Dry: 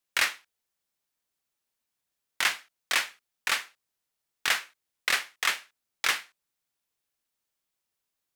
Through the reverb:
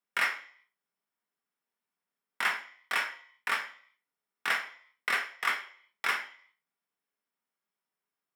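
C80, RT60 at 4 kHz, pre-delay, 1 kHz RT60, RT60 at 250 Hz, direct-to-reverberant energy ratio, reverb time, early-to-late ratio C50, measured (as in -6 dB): 15.0 dB, 0.55 s, 3 ms, 0.55 s, 0.45 s, 2.0 dB, 0.50 s, 10.0 dB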